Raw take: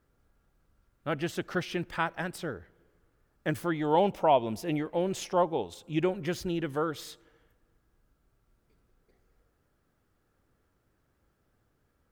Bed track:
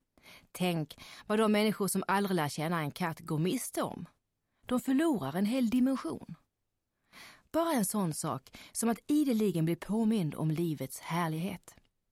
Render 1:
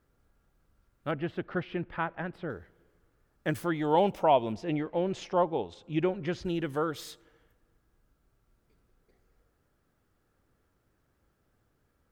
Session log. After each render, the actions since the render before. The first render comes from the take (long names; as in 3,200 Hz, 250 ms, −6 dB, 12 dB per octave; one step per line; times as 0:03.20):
0:01.11–0:02.50: high-frequency loss of the air 430 metres
0:04.52–0:06.45: high-frequency loss of the air 130 metres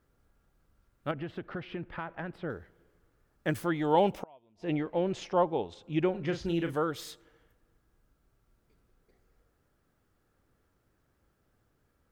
0:01.11–0:02.43: downward compressor, threshold −32 dBFS
0:04.15–0:04.65: gate with flip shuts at −25 dBFS, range −33 dB
0:06.11–0:06.73: double-tracking delay 36 ms −8 dB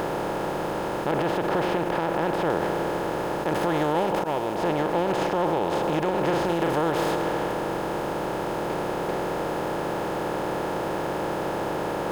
compressor on every frequency bin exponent 0.2
brickwall limiter −14.5 dBFS, peak gain reduction 11 dB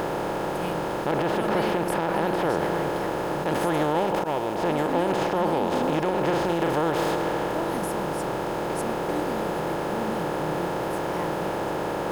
mix in bed track −5 dB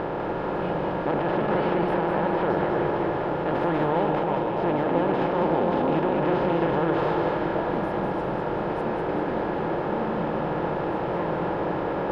high-frequency loss of the air 350 metres
echo with a time of its own for lows and highs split 830 Hz, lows 279 ms, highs 198 ms, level −4 dB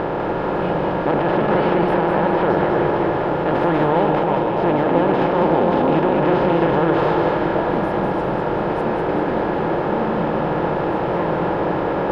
level +6.5 dB